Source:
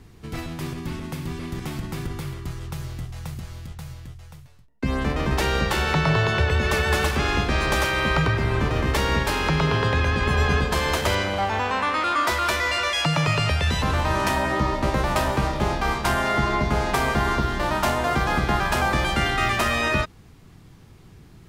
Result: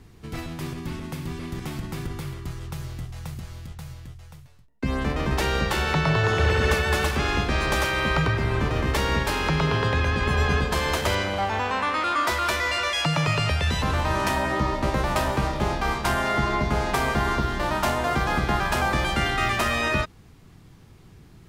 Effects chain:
0:06.17–0:06.74: flutter between parallel walls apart 11.3 metres, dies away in 1.3 s
level −1.5 dB

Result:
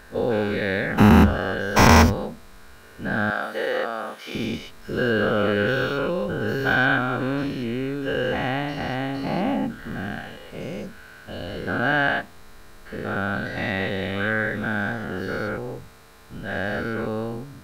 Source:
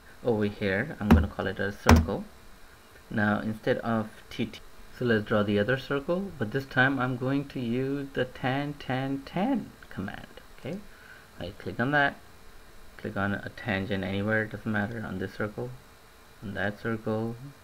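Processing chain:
every bin's largest magnitude spread in time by 240 ms
0:03.30–0:04.35: high-pass filter 480 Hz 12 dB per octave
level −1.5 dB

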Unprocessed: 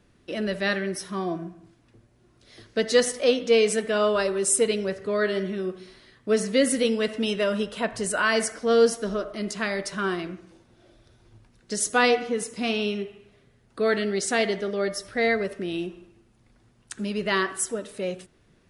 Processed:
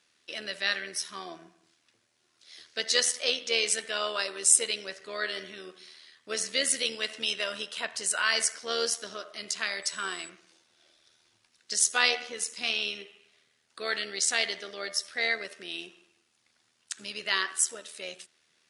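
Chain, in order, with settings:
0:09.82–0:10.28: steady tone 7,900 Hz −47 dBFS
amplitude modulation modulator 79 Hz, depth 35%
resonant band-pass 5,400 Hz, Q 0.72
level +7 dB

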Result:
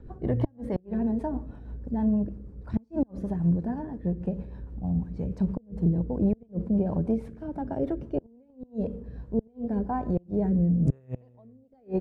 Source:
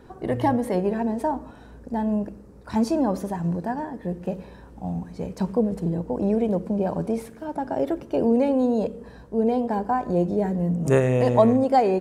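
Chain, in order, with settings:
gate with flip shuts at −13 dBFS, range −34 dB
RIAA equalisation playback
rotating-speaker cabinet horn 6.3 Hz, later 1 Hz, at 0:08.48
level −6 dB

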